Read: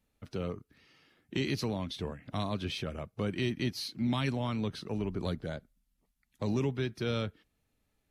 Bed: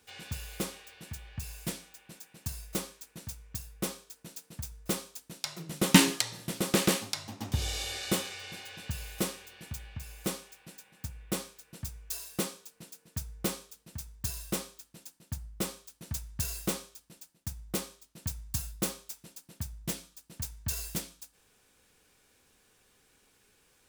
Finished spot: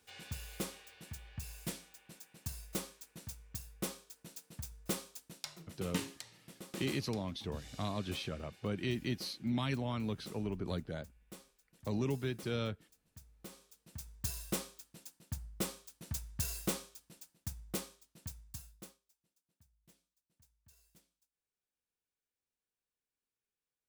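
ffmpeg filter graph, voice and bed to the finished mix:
-filter_complex "[0:a]adelay=5450,volume=-4dB[a];[1:a]volume=10.5dB,afade=t=out:st=5.19:d=0.66:silence=0.199526,afade=t=in:st=13.49:d=0.68:silence=0.16788,afade=t=out:st=17.41:d=1.59:silence=0.0398107[b];[a][b]amix=inputs=2:normalize=0"

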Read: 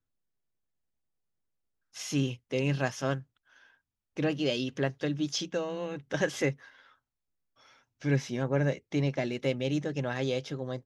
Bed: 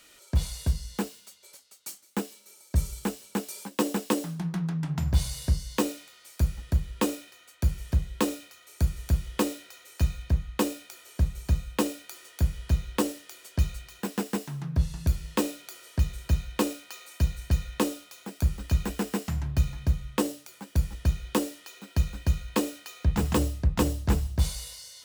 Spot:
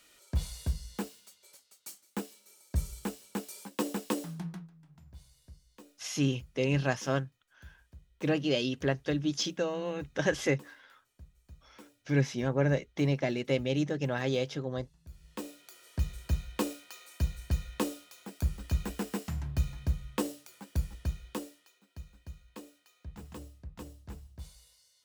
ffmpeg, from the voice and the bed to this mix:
-filter_complex "[0:a]adelay=4050,volume=0.5dB[a];[1:a]volume=16.5dB,afade=t=out:st=4.41:d=0.28:silence=0.0794328,afade=t=in:st=15.06:d=1.03:silence=0.0749894,afade=t=out:st=20.67:d=1.13:silence=0.16788[b];[a][b]amix=inputs=2:normalize=0"

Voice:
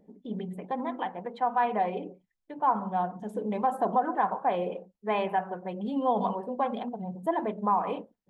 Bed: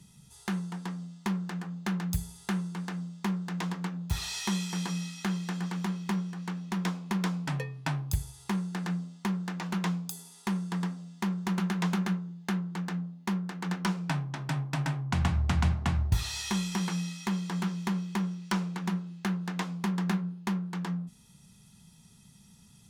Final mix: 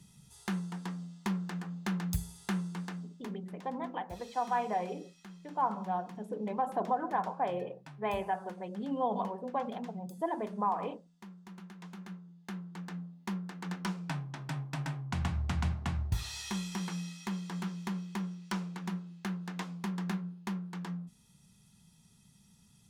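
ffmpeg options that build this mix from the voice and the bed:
-filter_complex "[0:a]adelay=2950,volume=-5.5dB[a];[1:a]volume=11dB,afade=t=out:st=2.76:d=0.62:silence=0.141254,afade=t=in:st=11.88:d=1.4:silence=0.211349[b];[a][b]amix=inputs=2:normalize=0"

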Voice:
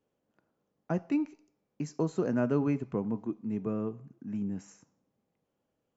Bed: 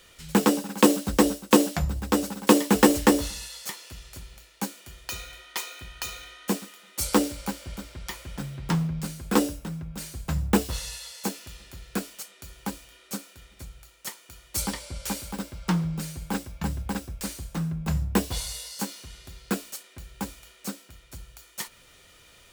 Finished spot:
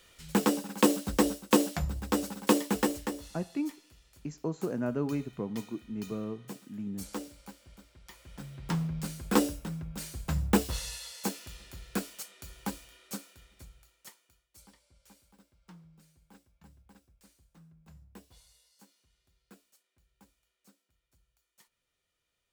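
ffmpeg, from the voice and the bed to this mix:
-filter_complex "[0:a]adelay=2450,volume=-3.5dB[a];[1:a]volume=8.5dB,afade=t=out:st=2.4:d=0.71:silence=0.266073,afade=t=in:st=8.06:d=1.09:silence=0.199526,afade=t=out:st=12.7:d=1.77:silence=0.0530884[b];[a][b]amix=inputs=2:normalize=0"

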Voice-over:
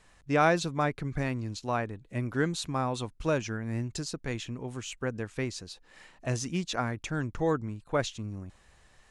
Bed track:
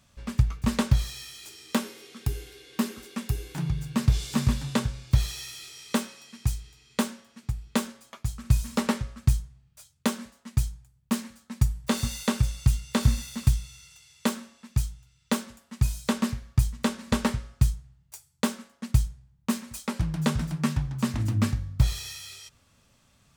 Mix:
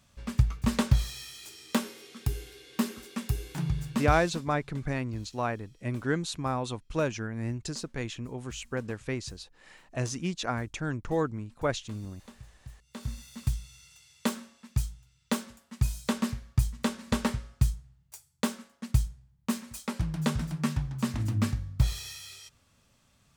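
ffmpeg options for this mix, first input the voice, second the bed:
-filter_complex "[0:a]adelay=3700,volume=-0.5dB[a];[1:a]volume=21dB,afade=t=out:st=3.84:d=0.62:silence=0.0630957,afade=t=in:st=12.82:d=1.18:silence=0.0749894[b];[a][b]amix=inputs=2:normalize=0"

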